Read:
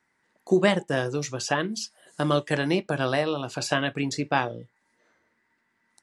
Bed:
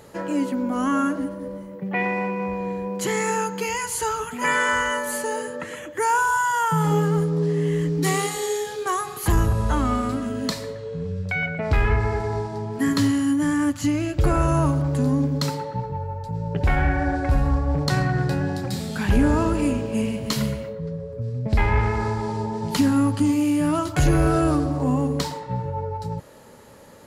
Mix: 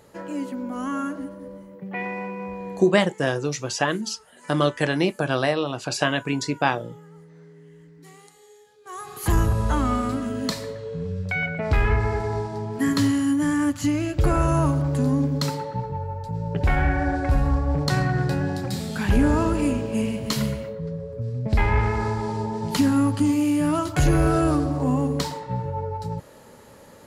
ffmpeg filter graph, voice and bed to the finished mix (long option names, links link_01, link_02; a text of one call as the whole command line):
ffmpeg -i stem1.wav -i stem2.wav -filter_complex "[0:a]adelay=2300,volume=2.5dB[link_01];[1:a]volume=19.5dB,afade=type=out:start_time=2.76:duration=0.28:silence=0.1,afade=type=in:start_time=8.83:duration=0.51:silence=0.0530884[link_02];[link_01][link_02]amix=inputs=2:normalize=0" out.wav